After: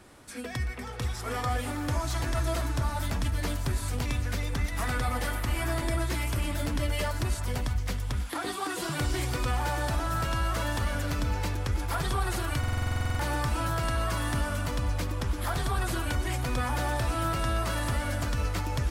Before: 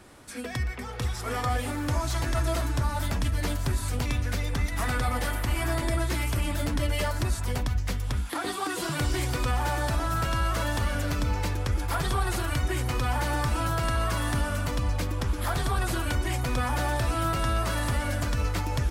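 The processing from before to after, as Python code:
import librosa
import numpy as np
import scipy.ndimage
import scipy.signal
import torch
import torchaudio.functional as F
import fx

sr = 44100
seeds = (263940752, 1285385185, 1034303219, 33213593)

y = fx.echo_thinned(x, sr, ms=322, feedback_pct=54, hz=420.0, wet_db=-14)
y = fx.buffer_glitch(y, sr, at_s=(12.59,), block=2048, repeats=12)
y = F.gain(torch.from_numpy(y), -2.0).numpy()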